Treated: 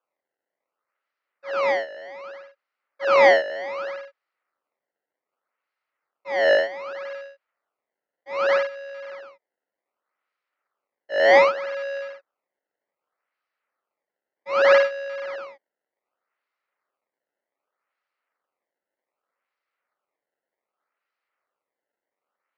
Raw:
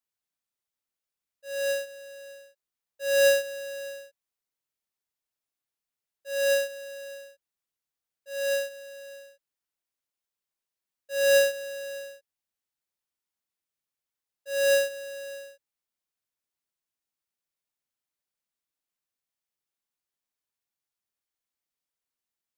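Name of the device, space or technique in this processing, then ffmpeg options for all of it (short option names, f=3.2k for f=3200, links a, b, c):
circuit-bent sampling toy: -af "acrusher=samples=21:mix=1:aa=0.000001:lfo=1:lforange=33.6:lforate=0.65,lowpass=f=6.8k:w=0.5412,lowpass=f=6.8k:w=1.3066,highpass=490,equalizer=f=550:t=q:w=4:g=5,equalizer=f=1.3k:t=q:w=4:g=9,equalizer=f=2k:t=q:w=4:g=6,equalizer=f=3.5k:t=q:w=4:g=-8,lowpass=f=4.4k:w=0.5412,lowpass=f=4.4k:w=1.3066,volume=4dB"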